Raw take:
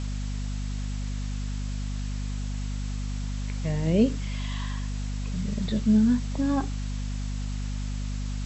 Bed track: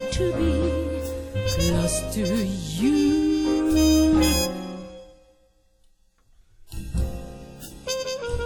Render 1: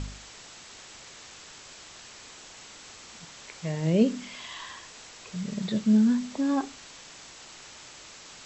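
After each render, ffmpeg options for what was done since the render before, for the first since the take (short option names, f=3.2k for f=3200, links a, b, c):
-af "bandreject=f=50:t=h:w=4,bandreject=f=100:t=h:w=4,bandreject=f=150:t=h:w=4,bandreject=f=200:t=h:w=4,bandreject=f=250:t=h:w=4"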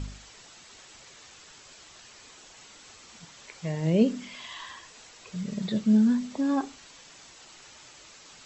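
-af "afftdn=nr=6:nf=-48"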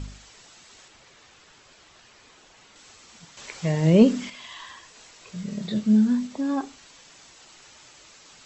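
-filter_complex "[0:a]asettb=1/sr,asplit=3[a][b][c];[a]atrim=end=0.884[d];[b]atrim=start=0.88:end=2.76,asetpts=PTS-STARTPTS,afade=t=in:d=0.004:c=qsin,afade=t=out:st=1.876:d=0.004:c=qsin,highshelf=f=5.9k:g=-11.5[e];[c]atrim=start=2.756[f];[d][e]acrossfade=d=0.004:c1=hsin:c2=qsin[g];[g][f]acrossfade=d=0.004:c1=qsin:c2=hsin,asettb=1/sr,asplit=3[h][i][j];[h]atrim=end=3.374[k];[i]atrim=start=3.37:end=4.3,asetpts=PTS-STARTPTS,afade=t=in:d=0.004:c=qsin,afade=t=out:st=0.926:d=0.004:c=qsin,acontrast=87[l];[j]atrim=start=4.296[m];[k][l]acrossfade=d=0.004:c1=hsin:c2=qsin[n];[n][m]acrossfade=d=0.004:c1=qsin:c2=hsin,asettb=1/sr,asplit=3[o][p][q];[o]atrim=end=4.934[r];[p]atrim=start=4.93:end=6.27,asetpts=PTS-STARTPTS,afade=t=in:d=0.004:c=qsin,afade=t=out:st=1.336:d=0.004:c=qsin,asplit=2[s][t];[t]adelay=24,volume=-6.5dB[u];[s][u]amix=inputs=2:normalize=0,atrim=end_sample=59094[v];[q]atrim=start=6.266[w];[r][v]acrossfade=d=0.004:c1=hsin:c2=qsin[x];[x][w]acrossfade=d=0.004:c1=qsin:c2=hsin"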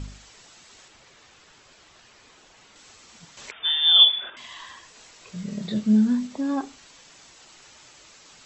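-filter_complex "[0:a]asettb=1/sr,asplit=3[a][b][c];[a]atrim=end=3.514[d];[b]atrim=start=3.51:end=4.37,asetpts=PTS-STARTPTS,afade=t=in:d=0.004:c=qsin,afade=t=out:st=0.856:d=0.004:c=qsin,lowpass=f=3.1k:t=q:w=0.5098,lowpass=f=3.1k:t=q:w=0.6013,lowpass=f=3.1k:t=q:w=0.9,lowpass=f=3.1k:t=q:w=2.563,afreqshift=-3700[e];[c]atrim=start=4.366[f];[d][e]acrossfade=d=0.004:c1=hsin:c2=qsin[g];[g][f]acrossfade=d=0.004:c1=qsin:c2=hsin"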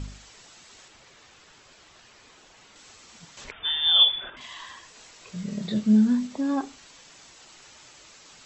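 -filter_complex "[0:a]asettb=1/sr,asplit=3[a][b][c];[a]atrim=end=3.444[d];[b]atrim=start=3.44:end=4.41,asetpts=PTS-STARTPTS,afade=t=in:d=0.004:c=qsin,afade=t=out:st=0.966:d=0.004:c=qsin,aemphasis=mode=reproduction:type=bsi[e];[c]atrim=start=4.406[f];[d][e]acrossfade=d=0.004:c1=hsin:c2=qsin[g];[g][f]acrossfade=d=0.004:c1=qsin:c2=hsin"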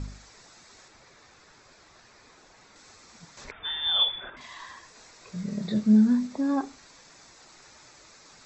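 -af "lowpass=6.9k,equalizer=f=3k:t=o:w=0.38:g=-12"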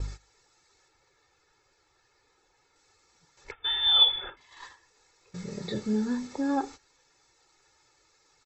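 -af "agate=range=-15dB:threshold=-42dB:ratio=16:detection=peak,aecho=1:1:2.3:0.7"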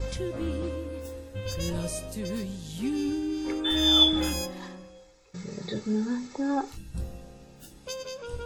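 -filter_complex "[1:a]volume=-9dB[a];[0:a][a]amix=inputs=2:normalize=0"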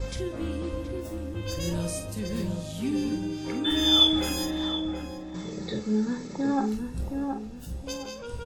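-filter_complex "[0:a]asplit=2[a][b];[b]adelay=47,volume=-9dB[c];[a][c]amix=inputs=2:normalize=0,asplit=2[d][e];[e]adelay=723,lowpass=f=1.1k:p=1,volume=-4dB,asplit=2[f][g];[g]adelay=723,lowpass=f=1.1k:p=1,volume=0.33,asplit=2[h][i];[i]adelay=723,lowpass=f=1.1k:p=1,volume=0.33,asplit=2[j][k];[k]adelay=723,lowpass=f=1.1k:p=1,volume=0.33[l];[f][h][j][l]amix=inputs=4:normalize=0[m];[d][m]amix=inputs=2:normalize=0"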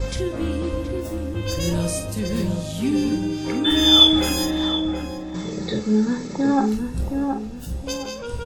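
-af "volume=7dB"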